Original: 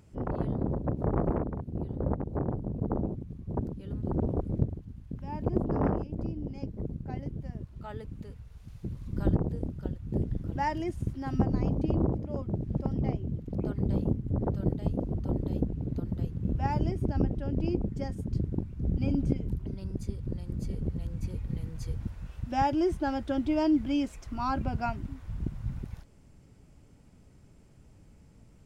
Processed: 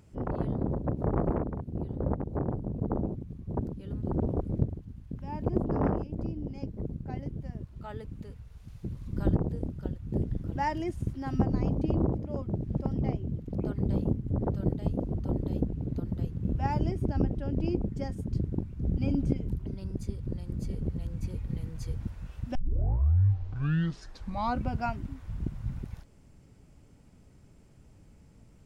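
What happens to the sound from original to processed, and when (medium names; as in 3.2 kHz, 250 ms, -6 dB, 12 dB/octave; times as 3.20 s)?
22.55 s: tape start 2.16 s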